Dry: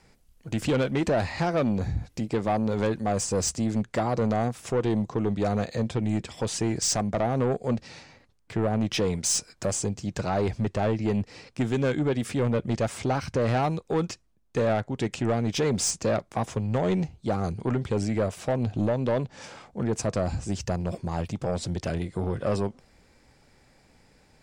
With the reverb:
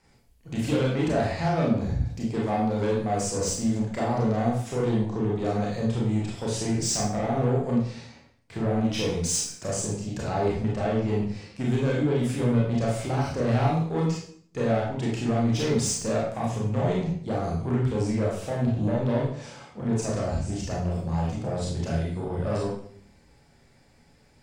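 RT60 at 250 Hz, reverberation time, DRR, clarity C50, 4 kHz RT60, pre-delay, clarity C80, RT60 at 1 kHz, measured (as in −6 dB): 0.75 s, 0.55 s, −4.5 dB, 2.5 dB, 0.50 s, 25 ms, 6.5 dB, 0.50 s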